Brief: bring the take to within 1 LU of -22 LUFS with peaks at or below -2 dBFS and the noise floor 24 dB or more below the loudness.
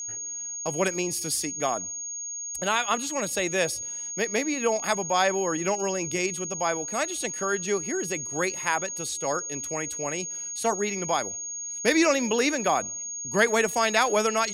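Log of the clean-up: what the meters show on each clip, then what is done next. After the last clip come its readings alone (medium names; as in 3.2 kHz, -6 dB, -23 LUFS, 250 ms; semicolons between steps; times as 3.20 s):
steady tone 6.6 kHz; tone level -32 dBFS; loudness -26.5 LUFS; peak level -6.5 dBFS; loudness target -22.0 LUFS
-> band-stop 6.6 kHz, Q 30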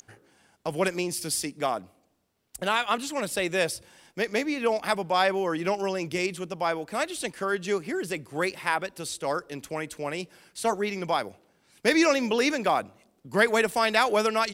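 steady tone not found; loudness -27.0 LUFS; peak level -6.0 dBFS; loudness target -22.0 LUFS
-> trim +5 dB; peak limiter -2 dBFS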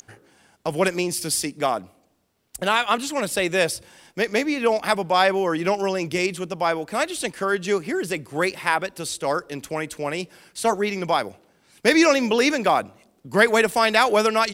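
loudness -22.0 LUFS; peak level -2.0 dBFS; noise floor -63 dBFS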